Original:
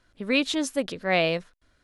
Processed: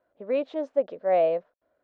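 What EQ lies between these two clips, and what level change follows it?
band-pass filter 600 Hz, Q 3.4; distance through air 130 m; +6.5 dB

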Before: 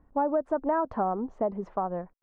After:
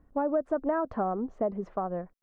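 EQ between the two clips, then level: peaking EQ 910 Hz -7 dB 0.39 oct; 0.0 dB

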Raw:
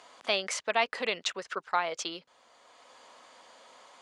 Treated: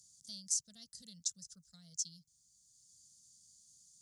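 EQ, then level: elliptic band-stop 150–5700 Hz, stop band 40 dB; bass shelf 380 Hz +8.5 dB; treble shelf 4.8 kHz +11 dB; -4.0 dB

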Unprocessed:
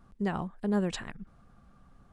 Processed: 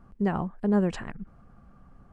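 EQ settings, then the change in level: treble shelf 2.6 kHz -11 dB; peaking EQ 3.7 kHz -7.5 dB 0.22 oct; +5.0 dB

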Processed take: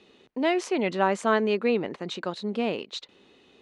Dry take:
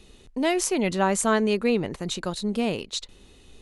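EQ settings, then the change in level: band-pass 240–3400 Hz; 0.0 dB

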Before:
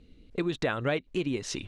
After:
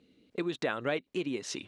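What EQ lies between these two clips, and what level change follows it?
high-pass 200 Hz 12 dB/octave; -2.5 dB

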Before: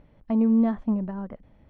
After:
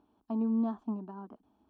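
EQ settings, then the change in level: Bessel high-pass 200 Hz, order 2; static phaser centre 540 Hz, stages 6; -4.0 dB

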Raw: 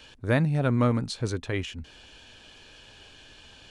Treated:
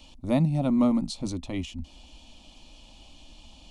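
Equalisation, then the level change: bass shelf 220 Hz +10.5 dB; static phaser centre 430 Hz, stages 6; 0.0 dB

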